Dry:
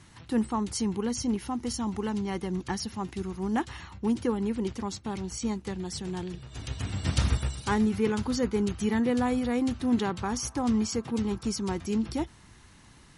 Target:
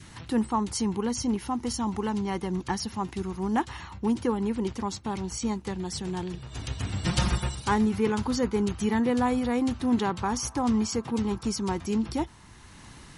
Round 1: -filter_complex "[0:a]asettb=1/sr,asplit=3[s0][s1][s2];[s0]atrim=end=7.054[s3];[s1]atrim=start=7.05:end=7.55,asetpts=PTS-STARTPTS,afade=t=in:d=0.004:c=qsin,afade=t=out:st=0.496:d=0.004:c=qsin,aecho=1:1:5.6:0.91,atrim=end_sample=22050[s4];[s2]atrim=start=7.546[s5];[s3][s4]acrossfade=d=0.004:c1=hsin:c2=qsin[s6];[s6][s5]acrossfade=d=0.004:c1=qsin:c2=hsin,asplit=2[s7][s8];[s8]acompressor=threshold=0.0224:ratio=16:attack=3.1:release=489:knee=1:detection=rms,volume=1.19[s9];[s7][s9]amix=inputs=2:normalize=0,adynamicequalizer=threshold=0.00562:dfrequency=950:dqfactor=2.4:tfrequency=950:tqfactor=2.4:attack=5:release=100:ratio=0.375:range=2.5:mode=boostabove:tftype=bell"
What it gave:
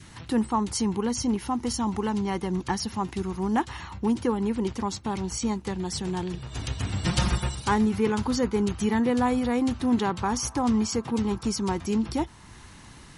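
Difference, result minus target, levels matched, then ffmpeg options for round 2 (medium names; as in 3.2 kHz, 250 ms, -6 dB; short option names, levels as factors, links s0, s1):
compression: peak gain reduction -8.5 dB
-filter_complex "[0:a]asettb=1/sr,asplit=3[s0][s1][s2];[s0]atrim=end=7.054[s3];[s1]atrim=start=7.05:end=7.55,asetpts=PTS-STARTPTS,afade=t=in:d=0.004:c=qsin,afade=t=out:st=0.496:d=0.004:c=qsin,aecho=1:1:5.6:0.91,atrim=end_sample=22050[s4];[s2]atrim=start=7.546[s5];[s3][s4]acrossfade=d=0.004:c1=hsin:c2=qsin[s6];[s6][s5]acrossfade=d=0.004:c1=qsin:c2=hsin,asplit=2[s7][s8];[s8]acompressor=threshold=0.00794:ratio=16:attack=3.1:release=489:knee=1:detection=rms,volume=1.19[s9];[s7][s9]amix=inputs=2:normalize=0,adynamicequalizer=threshold=0.00562:dfrequency=950:dqfactor=2.4:tfrequency=950:tqfactor=2.4:attack=5:release=100:ratio=0.375:range=2.5:mode=boostabove:tftype=bell"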